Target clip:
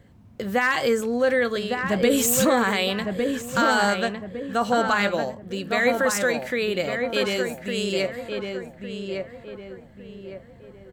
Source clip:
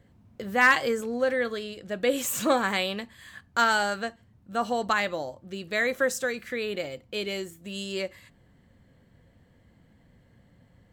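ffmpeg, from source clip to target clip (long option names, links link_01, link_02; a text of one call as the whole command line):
ffmpeg -i in.wav -filter_complex "[0:a]asettb=1/sr,asplit=3[link_01][link_02][link_03];[link_01]atrim=end=1.834[link_04];[link_02]atrim=start=1.83:end=2.45,asetpts=PTS-STARTPTS,afade=type=in:duration=0.004:curve=qsin,afade=type=out:start_time=0.616:duration=0.004:curve=qsin,bass=frequency=250:gain=10,treble=frequency=4000:gain=5[link_05];[link_03]atrim=start=2.446[link_06];[link_04][link_05]acrossfade=duration=0.004:curve1=hsin:curve2=qsin[link_07];[link_07][link_06]acrossfade=duration=0.004:curve1=qsin:curve2=hsin,alimiter=limit=-18.5dB:level=0:latency=1:release=12,asplit=2[link_08][link_09];[link_09]adelay=1157,lowpass=frequency=1700:poles=1,volume=-4dB,asplit=2[link_10][link_11];[link_11]adelay=1157,lowpass=frequency=1700:poles=1,volume=0.41,asplit=2[link_12][link_13];[link_13]adelay=1157,lowpass=frequency=1700:poles=1,volume=0.41,asplit=2[link_14][link_15];[link_15]adelay=1157,lowpass=frequency=1700:poles=1,volume=0.41,asplit=2[link_16][link_17];[link_17]adelay=1157,lowpass=frequency=1700:poles=1,volume=0.41[link_18];[link_08][link_10][link_12][link_14][link_16][link_18]amix=inputs=6:normalize=0,volume=6dB" out.wav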